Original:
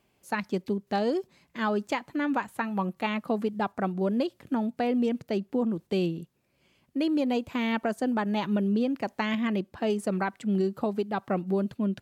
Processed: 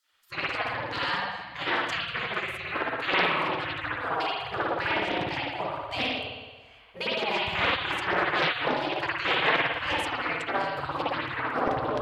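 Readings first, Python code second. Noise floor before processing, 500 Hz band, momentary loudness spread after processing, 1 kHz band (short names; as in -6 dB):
-71 dBFS, -2.0 dB, 7 LU, +4.5 dB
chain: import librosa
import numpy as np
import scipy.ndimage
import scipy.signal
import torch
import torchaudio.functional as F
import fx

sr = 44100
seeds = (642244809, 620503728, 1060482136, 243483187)

y = fx.high_shelf(x, sr, hz=5900.0, db=-11.0)
y = fx.rev_spring(y, sr, rt60_s=1.3, pass_ms=(56,), chirp_ms=25, drr_db=-8.0)
y = fx.spec_gate(y, sr, threshold_db=-20, keep='weak')
y = fx.doppler_dist(y, sr, depth_ms=0.51)
y = y * librosa.db_to_amplitude(7.5)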